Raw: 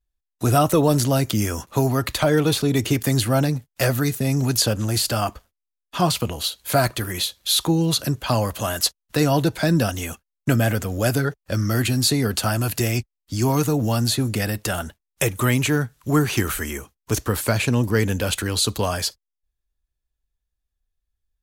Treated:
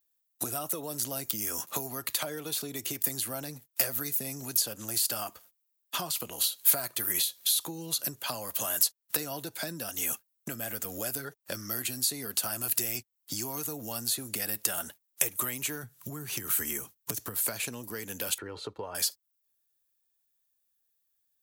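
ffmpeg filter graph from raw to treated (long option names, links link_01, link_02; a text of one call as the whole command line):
ffmpeg -i in.wav -filter_complex "[0:a]asettb=1/sr,asplit=3[link_01][link_02][link_03];[link_01]atrim=end=15.834[link_04];[link_02]atrim=start=15.83:end=17.41,asetpts=PTS-STARTPTS,afade=type=in:duration=0.004:curve=qsin,afade=type=out:start_time=1.576:duration=0.004:curve=qsin,equalizer=frequency=120:width_type=o:width=1.8:gain=11,acompressor=threshold=-15dB:ratio=2:attack=3.2:release=140:knee=1:detection=peak[link_05];[link_03]atrim=start=17.406[link_06];[link_04][link_05]acrossfade=duration=0.004:curve1=hsin:curve2=qsin[link_07];[link_07][link_06]acrossfade=duration=0.004:curve1=qsin:curve2=hsin,asettb=1/sr,asplit=3[link_08][link_09][link_10];[link_08]atrim=end=18.384[link_11];[link_09]atrim=start=18.38:end=18.95,asetpts=PTS-STARTPTS,afade=type=in:duration=0.004:curve=qsin,afade=type=out:start_time=0.566:duration=0.004:curve=qsin,agate=range=-6dB:threshold=-32dB:ratio=16:release=100:detection=peak,lowpass=1300,aecho=1:1:2.2:0.47,atrim=end_sample=25137[link_12];[link_10]atrim=start=18.946[link_13];[link_11][link_12]acrossfade=duration=0.004:curve1=hsin:curve2=qsin[link_14];[link_14][link_13]acrossfade=duration=0.004:curve1=qsin:curve2=hsin,highpass=100,acompressor=threshold=-32dB:ratio=16,aemphasis=mode=production:type=bsi" out.wav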